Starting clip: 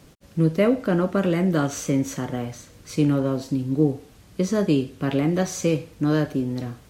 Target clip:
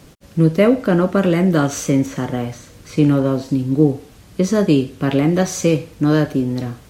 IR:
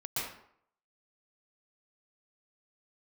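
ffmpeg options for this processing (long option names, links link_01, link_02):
-filter_complex "[0:a]asettb=1/sr,asplit=3[link_01][link_02][link_03];[link_01]atrim=end=2.064[link_04];[link_02]atrim=start=2.06:end=4.44,asetpts=PTS-STARTPTS,afade=type=in:duration=0.004:curve=qsin,afade=type=out:start_time=2.376:duration=0.004:curve=qsin,acrossover=split=3300[link_05][link_06];[link_06]acompressor=threshold=-45dB:ratio=4:attack=1:release=60[link_07];[link_05][link_07]amix=inputs=2:normalize=0[link_08];[link_03]atrim=start=4.436[link_09];[link_04][link_08]acrossfade=duration=0.004:curve1=hsin:curve2=qsin[link_10];[link_10][link_09]acrossfade=duration=0.004:curve1=qsin:curve2=hsin,volume=6dB"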